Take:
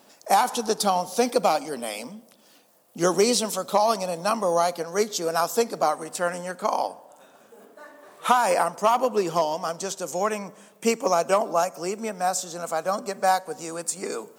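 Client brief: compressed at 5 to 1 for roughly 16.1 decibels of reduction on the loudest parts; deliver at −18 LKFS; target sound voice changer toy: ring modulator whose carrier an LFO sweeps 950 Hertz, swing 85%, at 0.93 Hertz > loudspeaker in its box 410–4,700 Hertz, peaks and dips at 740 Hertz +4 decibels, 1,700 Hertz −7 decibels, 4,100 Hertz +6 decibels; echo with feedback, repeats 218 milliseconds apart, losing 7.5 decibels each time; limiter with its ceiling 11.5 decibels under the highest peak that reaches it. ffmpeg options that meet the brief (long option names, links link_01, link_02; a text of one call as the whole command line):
ffmpeg -i in.wav -af "acompressor=threshold=-34dB:ratio=5,alimiter=level_in=6.5dB:limit=-24dB:level=0:latency=1,volume=-6.5dB,aecho=1:1:218|436|654|872|1090:0.422|0.177|0.0744|0.0312|0.0131,aeval=exprs='val(0)*sin(2*PI*950*n/s+950*0.85/0.93*sin(2*PI*0.93*n/s))':channel_layout=same,highpass=410,equalizer=frequency=740:width_type=q:width=4:gain=4,equalizer=frequency=1700:width_type=q:width=4:gain=-7,equalizer=frequency=4100:width_type=q:width=4:gain=6,lowpass=frequency=4700:width=0.5412,lowpass=frequency=4700:width=1.3066,volume=26dB" out.wav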